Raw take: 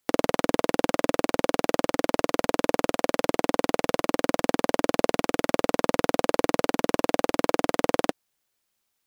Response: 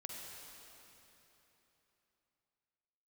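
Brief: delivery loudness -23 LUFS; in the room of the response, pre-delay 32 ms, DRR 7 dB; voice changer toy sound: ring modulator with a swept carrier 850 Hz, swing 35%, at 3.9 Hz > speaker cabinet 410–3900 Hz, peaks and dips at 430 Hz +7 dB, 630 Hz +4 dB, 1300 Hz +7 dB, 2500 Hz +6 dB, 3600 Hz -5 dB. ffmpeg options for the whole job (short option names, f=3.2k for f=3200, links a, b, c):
-filter_complex "[0:a]asplit=2[a][b];[1:a]atrim=start_sample=2205,adelay=32[c];[b][c]afir=irnorm=-1:irlink=0,volume=-4.5dB[d];[a][d]amix=inputs=2:normalize=0,aeval=exprs='val(0)*sin(2*PI*850*n/s+850*0.35/3.9*sin(2*PI*3.9*n/s))':c=same,highpass=410,equalizer=f=430:t=q:w=4:g=7,equalizer=f=630:t=q:w=4:g=4,equalizer=f=1.3k:t=q:w=4:g=7,equalizer=f=2.5k:t=q:w=4:g=6,equalizer=f=3.6k:t=q:w=4:g=-5,lowpass=f=3.9k:w=0.5412,lowpass=f=3.9k:w=1.3066,volume=1dB"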